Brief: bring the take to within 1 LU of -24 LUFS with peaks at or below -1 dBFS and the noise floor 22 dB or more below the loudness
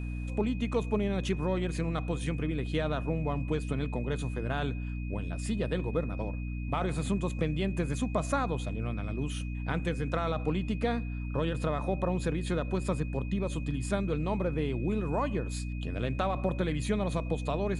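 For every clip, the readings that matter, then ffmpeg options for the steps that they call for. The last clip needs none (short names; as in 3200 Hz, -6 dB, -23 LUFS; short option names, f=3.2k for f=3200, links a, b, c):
hum 60 Hz; harmonics up to 300 Hz; hum level -33 dBFS; steady tone 2500 Hz; tone level -49 dBFS; loudness -32.0 LUFS; peak -15.0 dBFS; loudness target -24.0 LUFS
-> -af "bandreject=f=60:t=h:w=6,bandreject=f=120:t=h:w=6,bandreject=f=180:t=h:w=6,bandreject=f=240:t=h:w=6,bandreject=f=300:t=h:w=6"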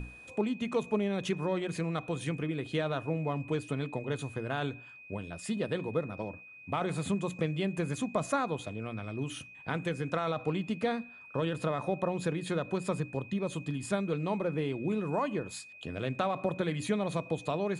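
hum none; steady tone 2500 Hz; tone level -49 dBFS
-> -af "bandreject=f=2.5k:w=30"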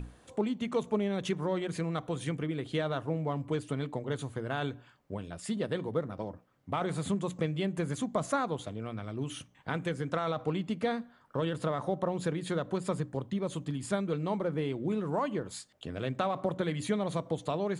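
steady tone none; loudness -34.0 LUFS; peak -16.5 dBFS; loudness target -24.0 LUFS
-> -af "volume=10dB"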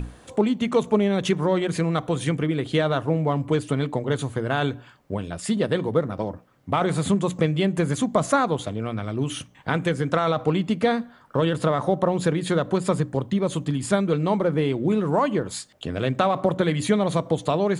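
loudness -24.0 LUFS; peak -6.5 dBFS; noise floor -52 dBFS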